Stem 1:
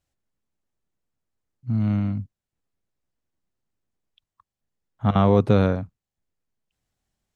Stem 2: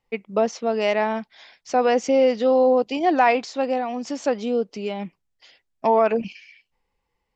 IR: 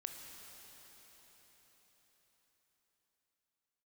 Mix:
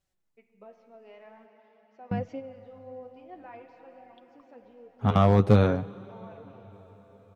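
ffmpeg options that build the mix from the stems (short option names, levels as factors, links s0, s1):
-filter_complex "[0:a]volume=1.12,asplit=3[s0][s1][s2];[s0]atrim=end=1.46,asetpts=PTS-STARTPTS,afade=t=out:st=1.456:d=0.004:c=hsin[s3];[s1]atrim=start=1.46:end=2.11,asetpts=PTS-STARTPTS,volume=0[s4];[s2]atrim=start=2.11,asetpts=PTS-STARTPTS,afade=t=in:d=0.004:c=hsin[s5];[s3][s4][s5]concat=n=3:v=0:a=1,asplit=3[s6][s7][s8];[s7]volume=0.282[s9];[1:a]lowpass=2500,adelay=250,volume=0.224,asplit=2[s10][s11];[s11]volume=0.316[s12];[s8]apad=whole_len=335450[s13];[s10][s13]sidechaingate=range=0.0501:threshold=0.00355:ratio=16:detection=peak[s14];[2:a]atrim=start_sample=2205[s15];[s9][s12]amix=inputs=2:normalize=0[s16];[s16][s15]afir=irnorm=-1:irlink=0[s17];[s6][s14][s17]amix=inputs=3:normalize=0,flanger=delay=5.2:depth=6.8:regen=40:speed=0.49:shape=sinusoidal,asoftclip=type=hard:threshold=0.316"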